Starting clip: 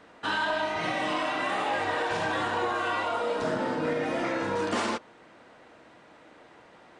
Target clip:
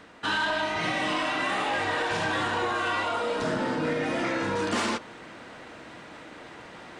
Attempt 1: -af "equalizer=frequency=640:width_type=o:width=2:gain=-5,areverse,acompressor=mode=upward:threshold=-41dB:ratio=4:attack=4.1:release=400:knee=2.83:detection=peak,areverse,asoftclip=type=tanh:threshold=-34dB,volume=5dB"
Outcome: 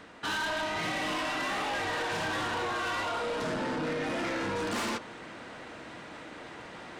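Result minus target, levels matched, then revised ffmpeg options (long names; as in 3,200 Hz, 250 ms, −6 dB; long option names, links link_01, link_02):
soft clipping: distortion +13 dB
-af "equalizer=frequency=640:width_type=o:width=2:gain=-5,areverse,acompressor=mode=upward:threshold=-41dB:ratio=4:attack=4.1:release=400:knee=2.83:detection=peak,areverse,asoftclip=type=tanh:threshold=-23dB,volume=5dB"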